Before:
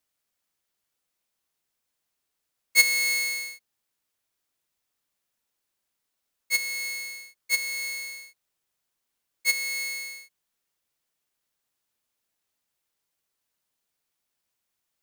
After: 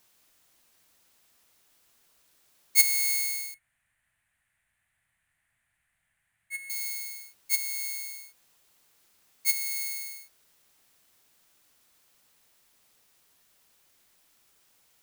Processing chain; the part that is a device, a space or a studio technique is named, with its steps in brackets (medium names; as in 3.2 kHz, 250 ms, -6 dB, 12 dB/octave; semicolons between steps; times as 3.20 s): turntable without a phono preamp (RIAA curve recording; white noise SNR 30 dB); 3.54–6.70 s: FFT filter 120 Hz 0 dB, 450 Hz -24 dB, 670 Hz -10 dB, 1.2 kHz -11 dB, 1.8 kHz +3 dB, 5.3 kHz -26 dB, 9.1 kHz -9 dB, 15 kHz -24 dB; trim -11.5 dB